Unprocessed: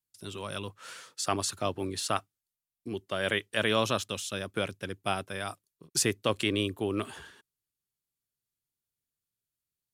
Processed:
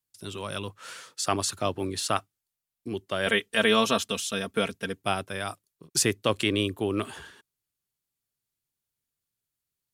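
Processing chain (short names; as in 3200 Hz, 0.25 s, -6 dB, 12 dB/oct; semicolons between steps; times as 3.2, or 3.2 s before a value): 3.26–5.02 comb 4.4 ms, depth 76%; gain +3 dB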